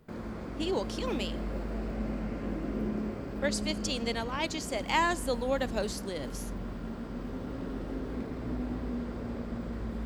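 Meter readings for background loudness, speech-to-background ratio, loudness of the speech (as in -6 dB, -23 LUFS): -37.5 LUFS, 4.5 dB, -33.0 LUFS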